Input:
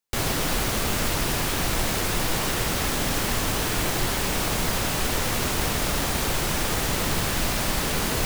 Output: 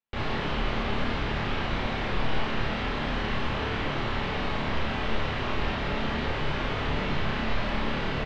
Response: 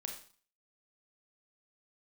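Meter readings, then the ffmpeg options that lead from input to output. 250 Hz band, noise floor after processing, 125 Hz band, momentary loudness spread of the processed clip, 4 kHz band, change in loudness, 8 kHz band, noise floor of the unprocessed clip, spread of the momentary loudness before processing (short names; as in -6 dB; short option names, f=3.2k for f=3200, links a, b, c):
-2.5 dB, -30 dBFS, -3.0 dB, 1 LU, -7.0 dB, -5.5 dB, -28.5 dB, -26 dBFS, 0 LU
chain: -filter_complex "[0:a]lowpass=f=3.4k:w=0.5412,lowpass=f=3.4k:w=1.3066,asplit=2[a][b];[b]adelay=27,volume=-4.5dB[c];[a][c]amix=inputs=2:normalize=0[d];[1:a]atrim=start_sample=2205[e];[d][e]afir=irnorm=-1:irlink=0,volume=-2.5dB"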